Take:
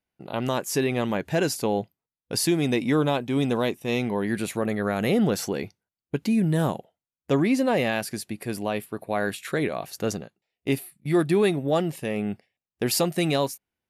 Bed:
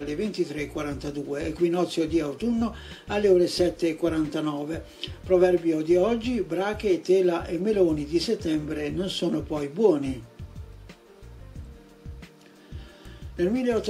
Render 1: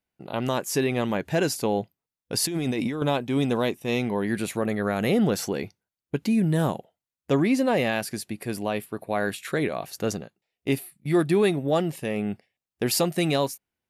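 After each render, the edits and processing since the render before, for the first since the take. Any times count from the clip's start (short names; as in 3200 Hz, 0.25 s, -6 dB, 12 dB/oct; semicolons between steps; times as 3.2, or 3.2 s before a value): 2.42–3.02 negative-ratio compressor -27 dBFS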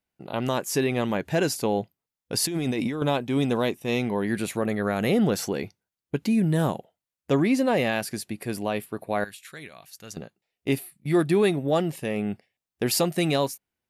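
9.24–10.17 passive tone stack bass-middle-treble 5-5-5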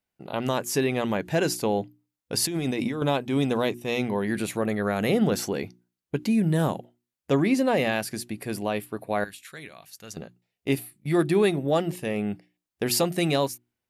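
notches 60/120/180/240/300/360 Hz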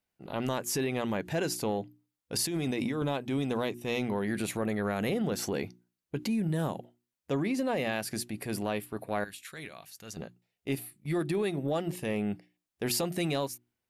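transient shaper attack -7 dB, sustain -1 dB; compressor, threshold -27 dBFS, peak gain reduction 9 dB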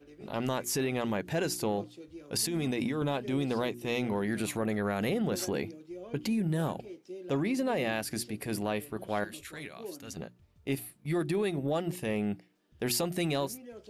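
add bed -23 dB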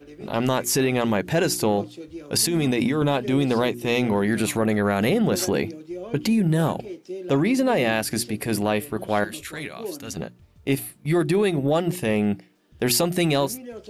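gain +9.5 dB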